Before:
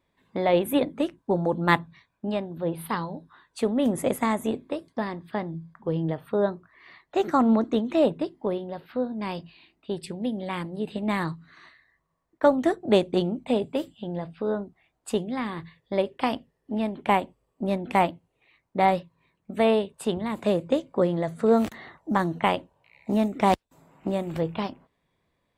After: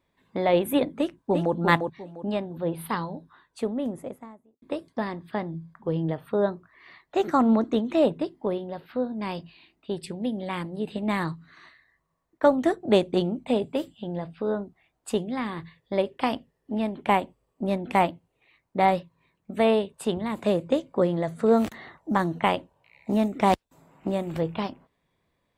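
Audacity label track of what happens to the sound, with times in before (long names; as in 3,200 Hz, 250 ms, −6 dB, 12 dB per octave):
0.980000	1.540000	delay throw 350 ms, feedback 25%, level −4.5 dB
3.070000	4.620000	fade out and dull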